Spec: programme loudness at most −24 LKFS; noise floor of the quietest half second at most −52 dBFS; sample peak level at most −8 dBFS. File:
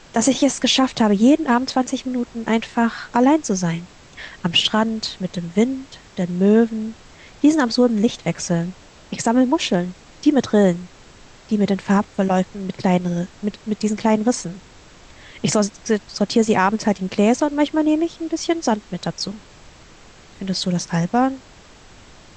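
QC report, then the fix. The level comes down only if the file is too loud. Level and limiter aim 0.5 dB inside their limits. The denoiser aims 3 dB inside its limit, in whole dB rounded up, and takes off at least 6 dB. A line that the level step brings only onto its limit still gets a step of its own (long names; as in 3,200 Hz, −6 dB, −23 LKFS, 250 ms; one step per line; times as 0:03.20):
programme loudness −19.5 LKFS: out of spec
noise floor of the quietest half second −45 dBFS: out of spec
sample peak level −5.0 dBFS: out of spec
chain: broadband denoise 6 dB, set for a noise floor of −45 dBFS
level −5 dB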